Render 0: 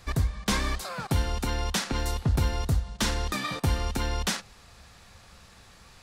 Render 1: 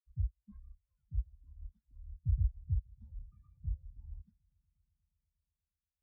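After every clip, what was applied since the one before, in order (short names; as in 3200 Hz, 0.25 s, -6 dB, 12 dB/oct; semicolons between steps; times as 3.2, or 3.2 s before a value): swelling echo 0.119 s, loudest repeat 8, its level -14 dB; spectral expander 4:1; gain -8 dB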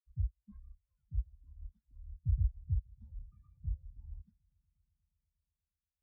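nothing audible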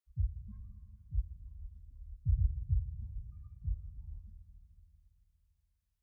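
Schroeder reverb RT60 3.2 s, combs from 26 ms, DRR 7.5 dB; gain +1 dB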